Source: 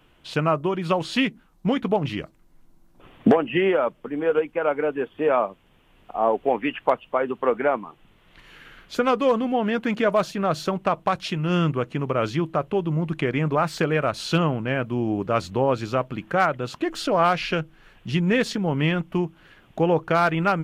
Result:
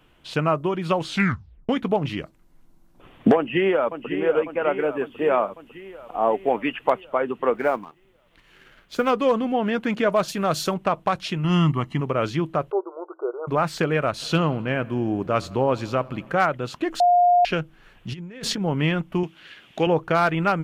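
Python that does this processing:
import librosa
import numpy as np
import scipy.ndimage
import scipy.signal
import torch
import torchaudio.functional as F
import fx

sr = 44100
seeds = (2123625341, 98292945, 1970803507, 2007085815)

y = fx.echo_throw(x, sr, start_s=3.36, length_s=0.75, ms=550, feedback_pct=65, wet_db=-9.0)
y = fx.high_shelf(y, sr, hz=6600.0, db=5.5, at=(4.78, 7.01))
y = fx.law_mismatch(y, sr, coded='A', at=(7.55, 9.11))
y = fx.high_shelf(y, sr, hz=4600.0, db=12.0, at=(10.28, 10.74))
y = fx.comb(y, sr, ms=1.0, depth=0.73, at=(11.44, 12.01))
y = fx.brickwall_bandpass(y, sr, low_hz=340.0, high_hz=1500.0, at=(12.7, 13.47), fade=0.02)
y = fx.echo_filtered(y, sr, ms=85, feedback_pct=77, hz=4800.0, wet_db=-23.5, at=(14.21, 16.33), fade=0.02)
y = fx.over_compress(y, sr, threshold_db=-28.0, ratio=-0.5, at=(18.12, 18.59), fade=0.02)
y = fx.weighting(y, sr, curve='D', at=(19.23, 19.87))
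y = fx.edit(y, sr, fx.tape_stop(start_s=1.07, length_s=0.62),
    fx.bleep(start_s=17.0, length_s=0.45, hz=709.0, db=-13.0), tone=tone)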